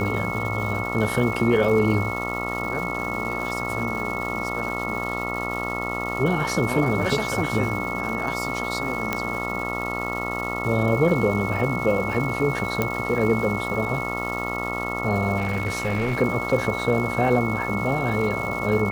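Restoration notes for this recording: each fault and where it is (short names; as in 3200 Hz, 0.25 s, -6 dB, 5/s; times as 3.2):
buzz 60 Hz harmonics 23 -30 dBFS
crackle 480/s -32 dBFS
tone 2200 Hz -29 dBFS
9.13 pop -9 dBFS
12.82 pop -8 dBFS
15.37–16.18 clipped -19.5 dBFS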